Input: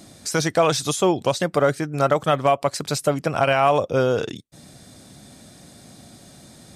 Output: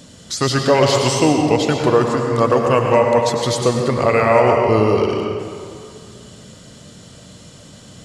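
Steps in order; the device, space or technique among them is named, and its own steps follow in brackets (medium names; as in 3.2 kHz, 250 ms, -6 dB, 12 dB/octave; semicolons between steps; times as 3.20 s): slowed and reverbed (tape speed -16%; reverberation RT60 2.3 s, pre-delay 90 ms, DRR 1.5 dB); trim +3 dB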